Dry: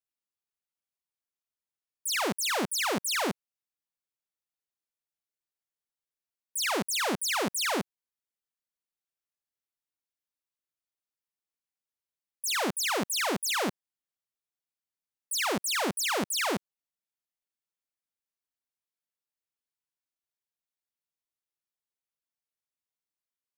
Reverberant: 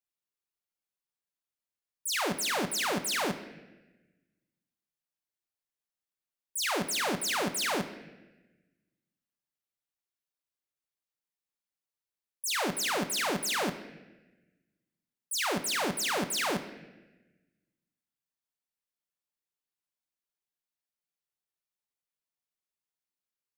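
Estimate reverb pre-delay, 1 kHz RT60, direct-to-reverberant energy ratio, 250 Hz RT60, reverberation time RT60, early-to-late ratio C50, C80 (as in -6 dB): 5 ms, 0.95 s, 7.0 dB, 1.5 s, 1.1 s, 11.0 dB, 12.5 dB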